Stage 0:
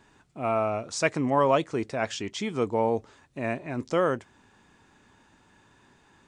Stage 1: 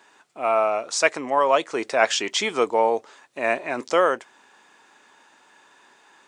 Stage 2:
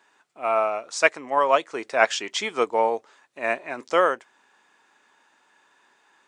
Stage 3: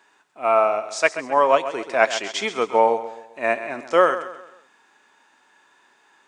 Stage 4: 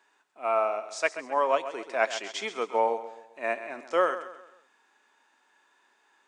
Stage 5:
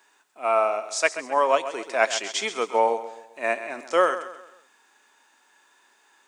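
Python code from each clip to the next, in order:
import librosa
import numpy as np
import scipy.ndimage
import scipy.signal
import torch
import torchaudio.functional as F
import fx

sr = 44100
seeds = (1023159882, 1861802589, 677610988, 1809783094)

y1 = scipy.signal.sosfilt(scipy.signal.butter(2, 520.0, 'highpass', fs=sr, output='sos'), x)
y1 = fx.rider(y1, sr, range_db=10, speed_s=0.5)
y1 = F.gain(torch.from_numpy(y1), 8.5).numpy()
y2 = fx.peak_eq(y1, sr, hz=1600.0, db=2.5, octaves=1.6)
y2 = fx.upward_expand(y2, sr, threshold_db=-29.0, expansion=1.5)
y3 = fx.echo_feedback(y2, sr, ms=132, feedback_pct=40, wet_db=-13.0)
y3 = fx.hpss(y3, sr, part='harmonic', gain_db=6)
y3 = F.gain(torch.from_numpy(y3), -1.0).numpy()
y4 = scipy.signal.sosfilt(scipy.signal.butter(2, 230.0, 'highpass', fs=sr, output='sos'), y3)
y4 = F.gain(torch.from_numpy(y4), -8.0).numpy()
y5 = fx.high_shelf(y4, sr, hz=5700.0, db=11.5)
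y5 = F.gain(torch.from_numpy(y5), 4.0).numpy()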